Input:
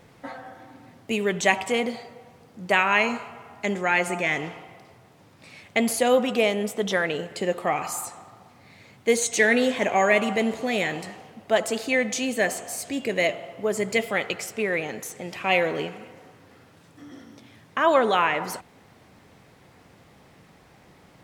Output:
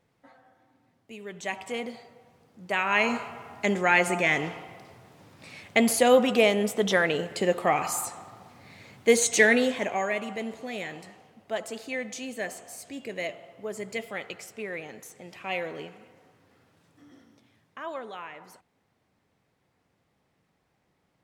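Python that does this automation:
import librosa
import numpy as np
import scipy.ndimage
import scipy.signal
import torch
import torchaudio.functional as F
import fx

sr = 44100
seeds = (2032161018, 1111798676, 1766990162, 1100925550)

y = fx.gain(x, sr, db=fx.line((1.12, -18.0), (1.75, -8.5), (2.68, -8.5), (3.16, 1.0), (9.4, 1.0), (10.15, -10.0), (17.12, -10.0), (18.11, -19.0)))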